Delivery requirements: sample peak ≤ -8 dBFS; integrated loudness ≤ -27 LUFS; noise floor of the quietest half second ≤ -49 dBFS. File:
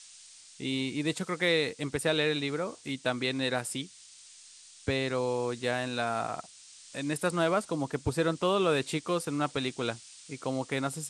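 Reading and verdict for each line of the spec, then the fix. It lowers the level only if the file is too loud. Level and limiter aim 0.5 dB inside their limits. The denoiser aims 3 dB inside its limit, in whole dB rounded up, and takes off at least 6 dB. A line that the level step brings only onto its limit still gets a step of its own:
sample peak -12.5 dBFS: OK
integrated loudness -31.0 LUFS: OK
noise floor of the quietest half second -53 dBFS: OK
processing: none

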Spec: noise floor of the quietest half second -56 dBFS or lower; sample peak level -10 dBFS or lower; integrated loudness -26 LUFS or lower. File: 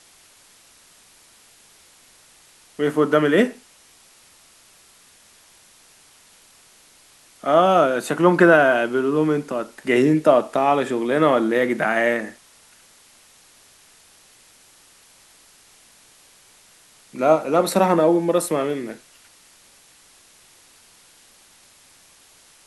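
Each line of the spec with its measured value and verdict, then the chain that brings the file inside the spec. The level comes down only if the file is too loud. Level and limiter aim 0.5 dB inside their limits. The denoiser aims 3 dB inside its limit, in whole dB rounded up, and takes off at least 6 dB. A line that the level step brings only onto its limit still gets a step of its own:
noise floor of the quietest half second -53 dBFS: fail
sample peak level -1.5 dBFS: fail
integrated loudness -19.0 LUFS: fail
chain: gain -7.5 dB; limiter -10.5 dBFS

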